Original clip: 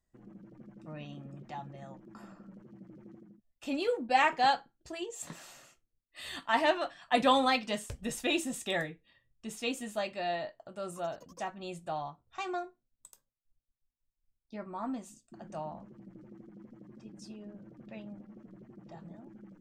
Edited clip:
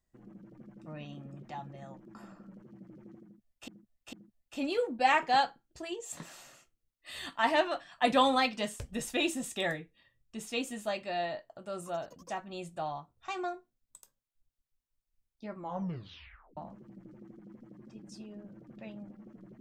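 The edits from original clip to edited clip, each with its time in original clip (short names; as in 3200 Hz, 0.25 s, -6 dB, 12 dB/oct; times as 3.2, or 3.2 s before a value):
3.23–3.68 loop, 3 plays
14.66 tape stop 1.01 s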